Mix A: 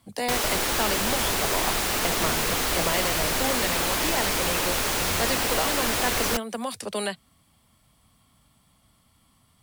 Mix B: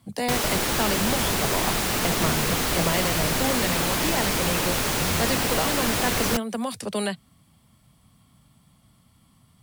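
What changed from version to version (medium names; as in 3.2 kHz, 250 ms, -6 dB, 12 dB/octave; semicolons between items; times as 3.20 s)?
master: add peaking EQ 150 Hz +8.5 dB 1.6 oct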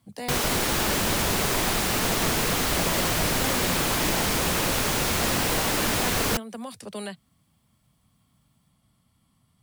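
speech -8.0 dB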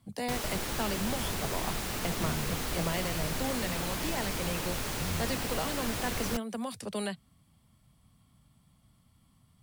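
background -11.0 dB; master: add bass shelf 89 Hz +7.5 dB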